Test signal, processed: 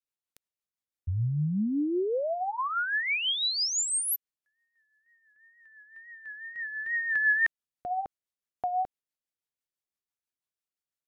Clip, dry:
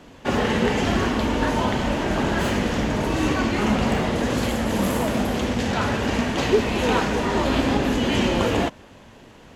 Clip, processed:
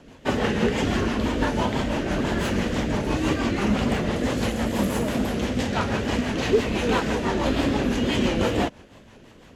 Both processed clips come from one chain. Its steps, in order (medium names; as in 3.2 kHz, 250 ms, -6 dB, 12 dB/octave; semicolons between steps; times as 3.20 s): wow and flutter 76 cents; rotary cabinet horn 6 Hz